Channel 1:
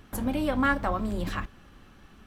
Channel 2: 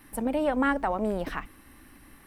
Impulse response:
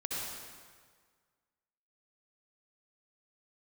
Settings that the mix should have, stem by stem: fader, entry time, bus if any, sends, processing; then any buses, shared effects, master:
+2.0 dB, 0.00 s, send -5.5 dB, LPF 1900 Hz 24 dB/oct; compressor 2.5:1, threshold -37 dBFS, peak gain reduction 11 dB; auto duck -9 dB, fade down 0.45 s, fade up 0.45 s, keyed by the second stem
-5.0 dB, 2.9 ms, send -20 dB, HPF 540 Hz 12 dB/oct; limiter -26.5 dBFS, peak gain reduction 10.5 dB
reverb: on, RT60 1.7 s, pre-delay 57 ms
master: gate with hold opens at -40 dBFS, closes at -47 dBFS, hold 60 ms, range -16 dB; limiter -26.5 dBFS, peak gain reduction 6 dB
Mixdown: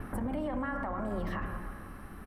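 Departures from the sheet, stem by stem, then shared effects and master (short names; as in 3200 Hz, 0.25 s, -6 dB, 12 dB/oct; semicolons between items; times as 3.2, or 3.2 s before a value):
stem 1 +2.0 dB -> +11.5 dB; reverb return -9.0 dB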